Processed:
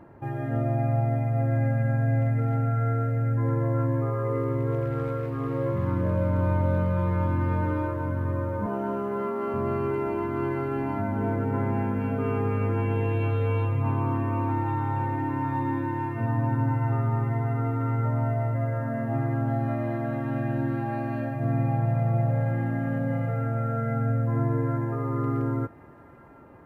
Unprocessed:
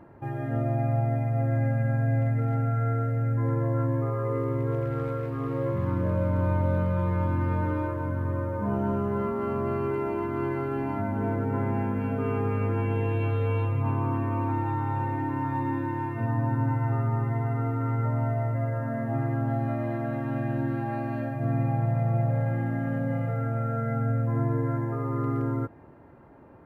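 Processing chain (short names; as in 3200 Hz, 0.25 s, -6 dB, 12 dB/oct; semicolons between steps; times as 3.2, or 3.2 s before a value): 8.66–9.54 HPF 250 Hz 12 dB/oct; thin delay 0.739 s, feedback 78%, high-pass 1800 Hz, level -17.5 dB; gain +1 dB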